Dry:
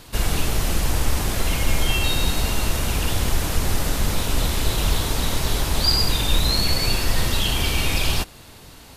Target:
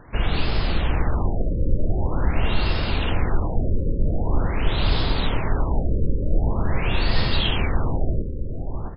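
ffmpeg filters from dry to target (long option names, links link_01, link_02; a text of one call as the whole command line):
ffmpeg -i in.wav -filter_complex "[0:a]asplit=2[link_01][link_02];[link_02]adelay=659,lowpass=frequency=1100:poles=1,volume=-6dB,asplit=2[link_03][link_04];[link_04]adelay=659,lowpass=frequency=1100:poles=1,volume=0.39,asplit=2[link_05][link_06];[link_06]adelay=659,lowpass=frequency=1100:poles=1,volume=0.39,asplit=2[link_07][link_08];[link_08]adelay=659,lowpass=frequency=1100:poles=1,volume=0.39,asplit=2[link_09][link_10];[link_10]adelay=659,lowpass=frequency=1100:poles=1,volume=0.39[link_11];[link_01][link_03][link_05][link_07][link_09][link_11]amix=inputs=6:normalize=0,afftfilt=real='re*lt(b*sr/1024,570*pow(5300/570,0.5+0.5*sin(2*PI*0.45*pts/sr)))':imag='im*lt(b*sr/1024,570*pow(5300/570,0.5+0.5*sin(2*PI*0.45*pts/sr)))':win_size=1024:overlap=0.75" out.wav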